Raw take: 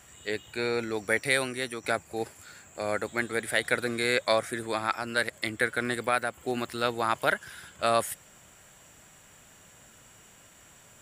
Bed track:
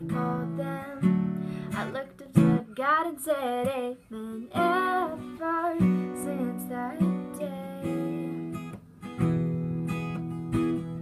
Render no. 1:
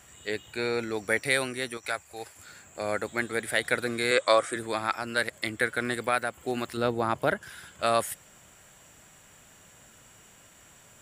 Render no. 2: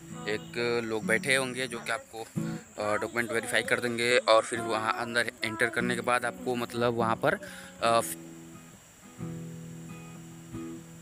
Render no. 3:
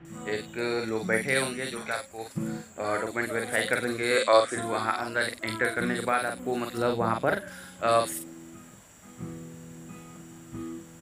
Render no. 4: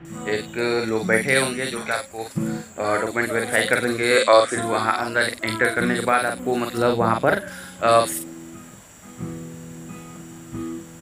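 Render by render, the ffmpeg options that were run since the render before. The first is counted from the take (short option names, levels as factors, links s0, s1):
-filter_complex "[0:a]asettb=1/sr,asplit=3[s0][s1][s2];[s0]atrim=end=1.774[s3];[s1]atrim=start=1.77:end=2.36,asetpts=PTS-STARTPTS,afade=t=in:d=0.004:c=qsin,afade=t=out:st=0.586:d=0.004:c=qsin,equalizer=f=220:w=0.49:g=-14[s4];[s2]atrim=start=2.356[s5];[s3][s4]acrossfade=d=0.004:c1=hsin:c2=qsin[s6];[s6][s5]acrossfade=d=0.004:c1=qsin:c2=hsin,asettb=1/sr,asplit=3[s7][s8][s9];[s7]atrim=end=4.114[s10];[s8]atrim=start=4.11:end=4.56,asetpts=PTS-STARTPTS,afade=t=in:d=0.004:c=qsin,afade=t=out:st=0.446:d=0.004:c=qsin,highpass=150,equalizer=f=200:t=q:w=4:g=-10,equalizer=f=310:t=q:w=4:g=4,equalizer=f=520:t=q:w=4:g=5,equalizer=f=1200:t=q:w=4:g=9,equalizer=f=3100:t=q:w=4:g=4,equalizer=f=8200:t=q:w=4:g=8,lowpass=f=9700:w=0.5412,lowpass=f=9700:w=1.3066[s11];[s9]atrim=start=4.556[s12];[s10][s11]acrossfade=d=0.004:c1=hsin:c2=qsin[s13];[s13][s12]acrossfade=d=0.004:c1=qsin:c2=hsin,asettb=1/sr,asplit=3[s14][s15][s16];[s14]atrim=end=6.774[s17];[s15]atrim=start=6.77:end=7.43,asetpts=PTS-STARTPTS,afade=t=in:d=0.004:c=qsin,afade=t=out:st=0.656:d=0.004:c=qsin,tiltshelf=f=820:g=6.5[s18];[s16]atrim=start=7.426[s19];[s17][s18]acrossfade=d=0.004:c1=hsin:c2=qsin[s20];[s20][s19]acrossfade=d=0.004:c1=qsin:c2=hsin"
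-filter_complex "[1:a]volume=0.224[s0];[0:a][s0]amix=inputs=2:normalize=0"
-filter_complex "[0:a]asplit=2[s0][s1];[s1]adelay=45,volume=0.531[s2];[s0][s2]amix=inputs=2:normalize=0,acrossover=split=2900[s3][s4];[s4]adelay=50[s5];[s3][s5]amix=inputs=2:normalize=0"
-af "volume=2.24,alimiter=limit=0.708:level=0:latency=1"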